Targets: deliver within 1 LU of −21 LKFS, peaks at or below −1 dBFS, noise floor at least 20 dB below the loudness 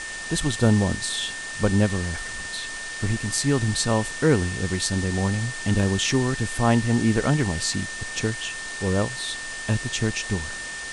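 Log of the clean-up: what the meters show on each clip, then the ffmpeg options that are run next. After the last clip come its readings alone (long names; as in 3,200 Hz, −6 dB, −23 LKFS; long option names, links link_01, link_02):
interfering tone 1,800 Hz; level of the tone −33 dBFS; background noise floor −34 dBFS; target noise floor −44 dBFS; integrated loudness −24.0 LKFS; sample peak −6.0 dBFS; target loudness −21.0 LKFS
→ -af "bandreject=frequency=1800:width=30"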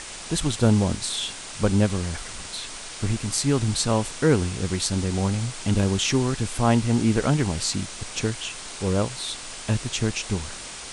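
interfering tone none found; background noise floor −38 dBFS; target noise floor −45 dBFS
→ -af "afftdn=noise_reduction=7:noise_floor=-38"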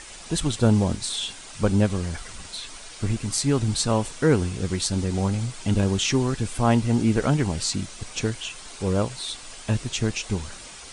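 background noise floor −42 dBFS; target noise floor −45 dBFS
→ -af "afftdn=noise_reduction=6:noise_floor=-42"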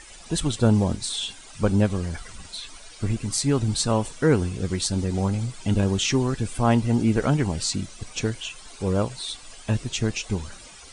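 background noise floor −45 dBFS; integrated loudness −24.5 LKFS; sample peak −6.0 dBFS; target loudness −21.0 LKFS
→ -af "volume=3.5dB"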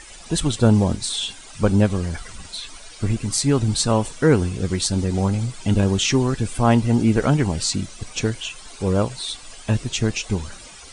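integrated loudness −21.0 LKFS; sample peak −2.5 dBFS; background noise floor −42 dBFS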